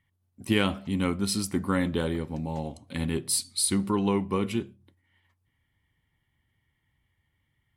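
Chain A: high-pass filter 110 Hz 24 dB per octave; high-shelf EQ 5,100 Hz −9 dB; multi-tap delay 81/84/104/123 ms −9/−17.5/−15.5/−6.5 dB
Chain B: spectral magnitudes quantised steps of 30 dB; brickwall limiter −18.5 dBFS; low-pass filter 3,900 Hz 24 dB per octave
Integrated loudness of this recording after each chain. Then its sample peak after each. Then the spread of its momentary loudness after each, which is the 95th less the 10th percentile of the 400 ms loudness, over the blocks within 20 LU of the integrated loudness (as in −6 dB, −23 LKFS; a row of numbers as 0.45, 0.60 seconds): −28.0, −31.5 LKFS; −8.5, −18.5 dBFS; 8, 8 LU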